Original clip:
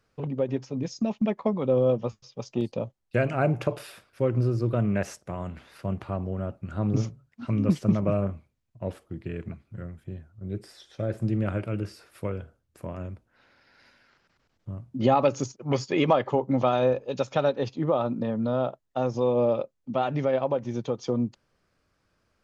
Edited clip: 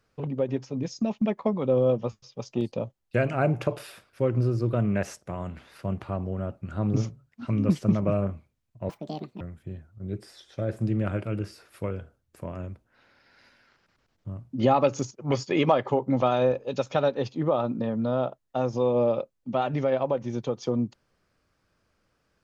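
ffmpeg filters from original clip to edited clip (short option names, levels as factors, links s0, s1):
-filter_complex "[0:a]asplit=3[s0][s1][s2];[s0]atrim=end=8.894[s3];[s1]atrim=start=8.89:end=9.82,asetpts=PTS-STARTPTS,asetrate=78939,aresample=44100,atrim=end_sample=22912,asetpts=PTS-STARTPTS[s4];[s2]atrim=start=9.816[s5];[s3][s4]acrossfade=d=0.004:c1=hsin:c2=hsin[s6];[s6][s5]acrossfade=d=0.004:c1=hsin:c2=hsin"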